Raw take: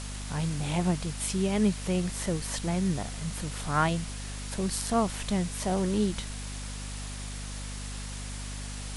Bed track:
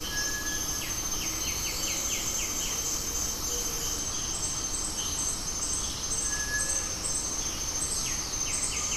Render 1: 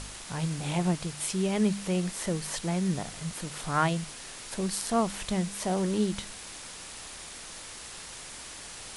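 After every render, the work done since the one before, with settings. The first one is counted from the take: de-hum 50 Hz, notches 5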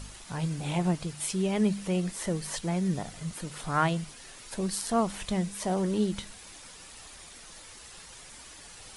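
denoiser 8 dB, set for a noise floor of -44 dBFS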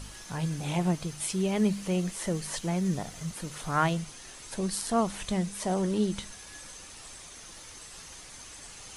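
add bed track -20.5 dB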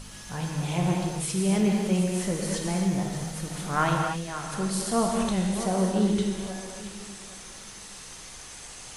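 regenerating reverse delay 0.408 s, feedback 42%, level -11 dB; non-linear reverb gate 0.31 s flat, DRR 0 dB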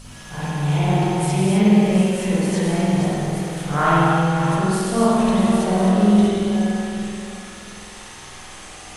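reverse delay 0.349 s, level -6.5 dB; spring tank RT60 1.3 s, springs 48 ms, chirp 60 ms, DRR -6.5 dB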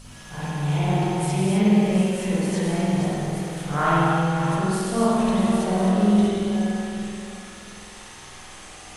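gain -3.5 dB

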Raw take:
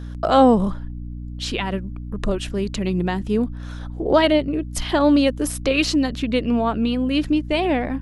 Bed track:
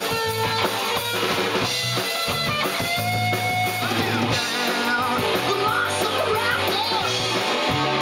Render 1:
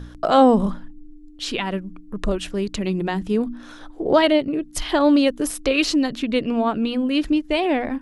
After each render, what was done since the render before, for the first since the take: de-hum 60 Hz, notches 4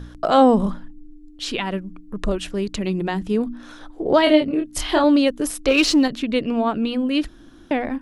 4.24–5.04 doubler 26 ms -3.5 dB; 5.68–6.08 sample leveller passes 1; 7.28–7.71 room tone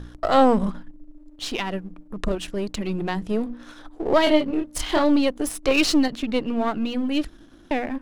half-wave gain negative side -7 dB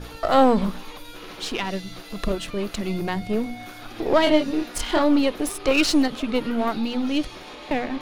add bed track -18 dB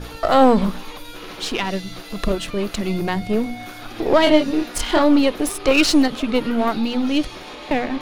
gain +4 dB; limiter -3 dBFS, peak gain reduction 2.5 dB

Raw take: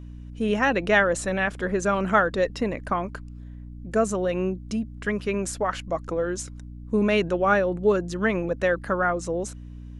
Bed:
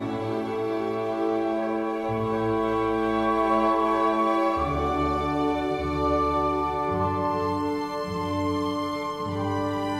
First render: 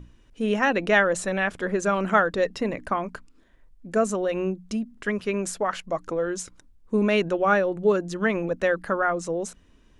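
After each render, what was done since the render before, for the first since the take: notches 60/120/180/240/300 Hz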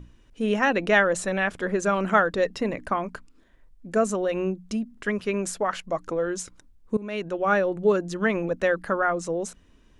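6.97–7.63 fade in, from -20 dB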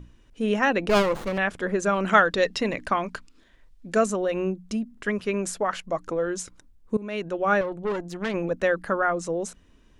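0.89–1.38 running maximum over 17 samples; 2.05–4.06 bell 4000 Hz +8.5 dB 2.3 oct; 7.61–8.34 tube stage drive 23 dB, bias 0.75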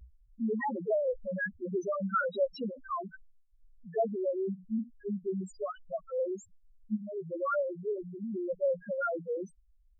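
loudest bins only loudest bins 1; vibrato 0.51 Hz 57 cents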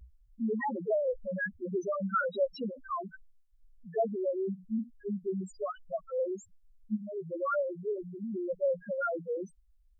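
5.23–6.24 dynamic EQ 930 Hz, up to +4 dB, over -50 dBFS, Q 2.5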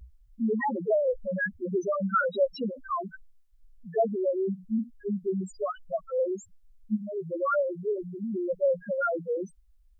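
gain +4.5 dB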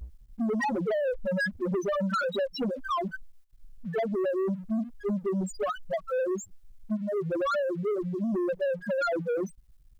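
compressor 6:1, threshold -29 dBFS, peak gain reduction 9.5 dB; sample leveller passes 2

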